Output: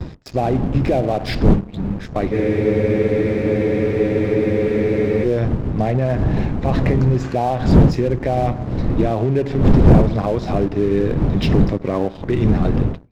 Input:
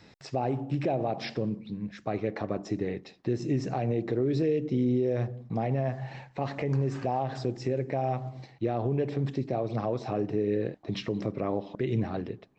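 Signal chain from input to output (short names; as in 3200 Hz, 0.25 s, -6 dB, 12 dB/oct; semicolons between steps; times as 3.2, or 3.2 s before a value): wind noise 190 Hz -26 dBFS; gate with hold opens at -34 dBFS; sample leveller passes 2; speed mistake 25 fps video run at 24 fps; spectral freeze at 2.35, 2.89 s; gain +2.5 dB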